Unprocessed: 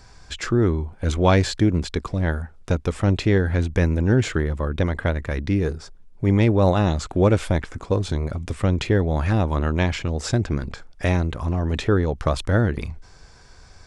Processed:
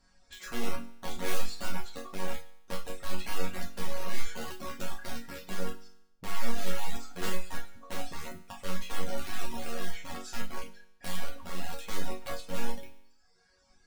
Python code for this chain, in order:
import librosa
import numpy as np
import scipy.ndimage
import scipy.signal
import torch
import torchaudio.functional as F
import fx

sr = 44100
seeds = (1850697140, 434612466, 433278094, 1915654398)

y = fx.cheby_harmonics(x, sr, harmonics=(3, 4), levels_db=(-20, -13), full_scale_db=-5.0)
y = (np.mod(10.0 ** (17.0 / 20.0) * y + 1.0, 2.0) - 1.0) / 10.0 ** (17.0 / 20.0)
y = fx.resonator_bank(y, sr, root=54, chord='major', decay_s=0.83)
y = fx.dereverb_blind(y, sr, rt60_s=0.85)
y = F.gain(torch.from_numpy(y), 11.5).numpy()